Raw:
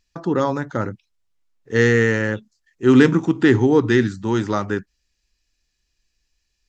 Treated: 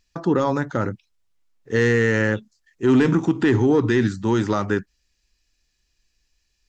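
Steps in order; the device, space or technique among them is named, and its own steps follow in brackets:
soft clipper into limiter (soft clipping −5 dBFS, distortion −21 dB; brickwall limiter −12 dBFS, peak gain reduction 6 dB)
level +2 dB

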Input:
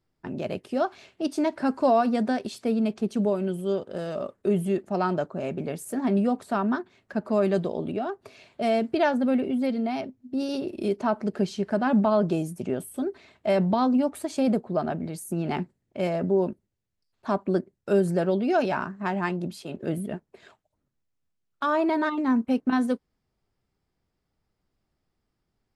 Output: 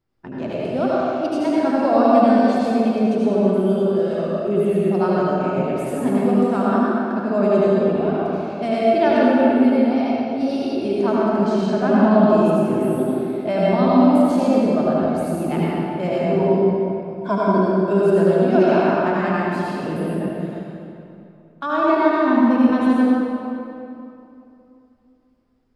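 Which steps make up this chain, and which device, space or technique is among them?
0:16.38–0:17.46: EQ curve with evenly spaced ripples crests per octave 1.7, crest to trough 17 dB
swimming-pool hall (convolution reverb RT60 2.8 s, pre-delay 70 ms, DRR −7 dB; high-shelf EQ 5,300 Hz −7.5 dB)

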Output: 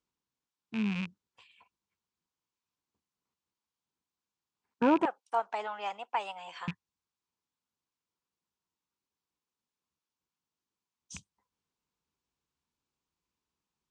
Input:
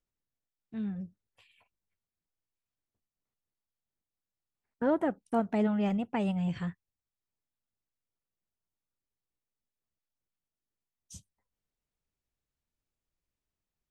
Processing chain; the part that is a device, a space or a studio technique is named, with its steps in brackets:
0:05.05–0:06.68: Chebyshev high-pass filter 660 Hz, order 3
car door speaker with a rattle (loose part that buzzes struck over −42 dBFS, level −31 dBFS; loudspeaker in its box 90–7,600 Hz, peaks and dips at 110 Hz −9 dB, 620 Hz −8 dB, 1,000 Hz +7 dB, 1,900 Hz −5 dB)
level +4 dB

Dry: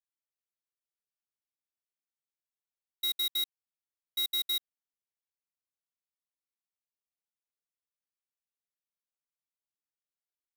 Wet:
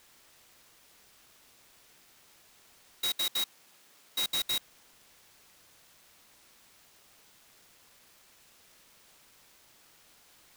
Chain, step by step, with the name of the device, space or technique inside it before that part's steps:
early CD player with a faulty converter (converter with a step at zero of −48 dBFS; converter with an unsteady clock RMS 0.021 ms)
0:03.04–0:04.24: high-pass filter 150 Hz 12 dB per octave

